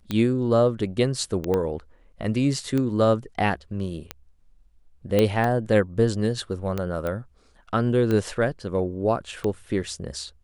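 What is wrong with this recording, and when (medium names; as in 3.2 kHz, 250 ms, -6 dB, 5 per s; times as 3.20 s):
tick 45 rpm -14 dBFS
1.54 s: pop -13 dBFS
5.19 s: pop -8 dBFS
7.07 s: pop -17 dBFS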